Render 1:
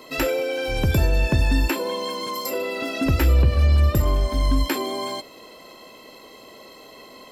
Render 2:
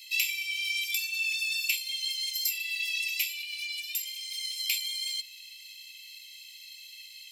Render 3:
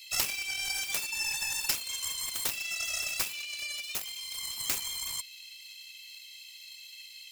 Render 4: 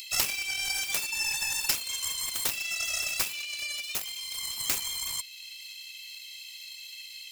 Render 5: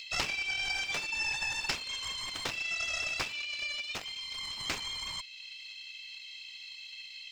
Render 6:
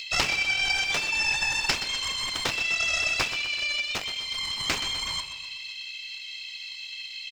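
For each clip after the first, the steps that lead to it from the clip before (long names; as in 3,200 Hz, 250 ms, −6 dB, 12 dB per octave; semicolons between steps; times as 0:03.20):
Butterworth high-pass 2,200 Hz 96 dB per octave; level +2.5 dB
phase distortion by the signal itself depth 0.33 ms
upward compression, threshold −41 dBFS; level +2.5 dB
high-frequency loss of the air 160 metres; level +2 dB
repeating echo 125 ms, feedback 53%, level −11 dB; level +7.5 dB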